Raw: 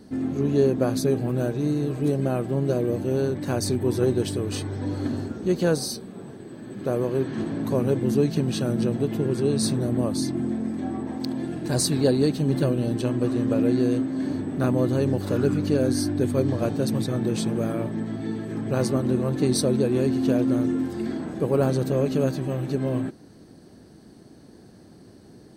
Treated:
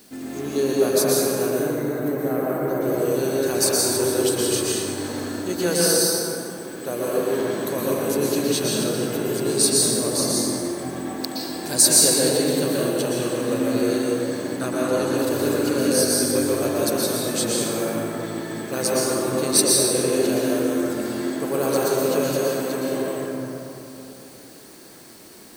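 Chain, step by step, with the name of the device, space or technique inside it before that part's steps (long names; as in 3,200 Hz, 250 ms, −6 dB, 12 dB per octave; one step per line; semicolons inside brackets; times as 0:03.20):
turntable without a phono preamp (RIAA equalisation recording; white noise bed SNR 26 dB)
0:01.50–0:02.82: gain on a spectral selection 2,300–12,000 Hz −13 dB
0:14.55–0:15.14: low-pass filter 11,000 Hz 12 dB per octave
dense smooth reverb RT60 3.1 s, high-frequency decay 0.4×, pre-delay 105 ms, DRR −6 dB
level −1 dB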